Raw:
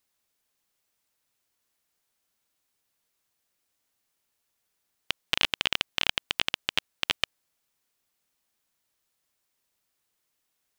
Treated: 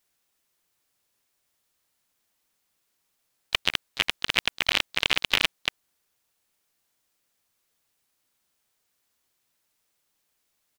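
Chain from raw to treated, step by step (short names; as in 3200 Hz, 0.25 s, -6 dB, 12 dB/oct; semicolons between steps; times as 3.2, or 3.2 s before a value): whole clip reversed; harmoniser -5 st -15 dB, -4 st -10 dB, +5 st -18 dB; gain +2.5 dB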